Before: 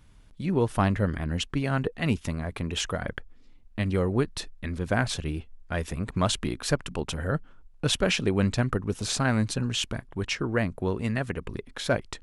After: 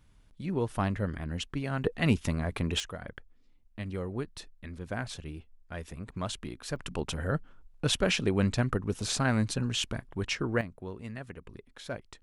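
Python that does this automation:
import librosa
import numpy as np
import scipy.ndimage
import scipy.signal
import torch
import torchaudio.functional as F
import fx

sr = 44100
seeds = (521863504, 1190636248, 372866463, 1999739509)

y = fx.gain(x, sr, db=fx.steps((0.0, -6.0), (1.84, 0.5), (2.8, -10.0), (6.76, -2.5), (10.61, -12.5)))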